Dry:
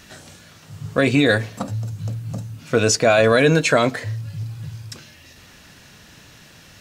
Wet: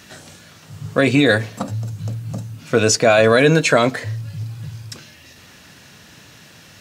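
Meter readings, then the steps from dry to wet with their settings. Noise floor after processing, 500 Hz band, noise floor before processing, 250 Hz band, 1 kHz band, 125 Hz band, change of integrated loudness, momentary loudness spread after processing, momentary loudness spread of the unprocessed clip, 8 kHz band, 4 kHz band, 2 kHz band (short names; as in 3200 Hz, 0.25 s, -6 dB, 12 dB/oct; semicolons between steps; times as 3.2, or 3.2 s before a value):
-46 dBFS, +2.0 dB, -47 dBFS, +2.0 dB, +2.0 dB, +1.5 dB, +2.5 dB, 20 LU, 19 LU, +2.0 dB, +2.0 dB, +2.0 dB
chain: HPF 80 Hz; gain +2 dB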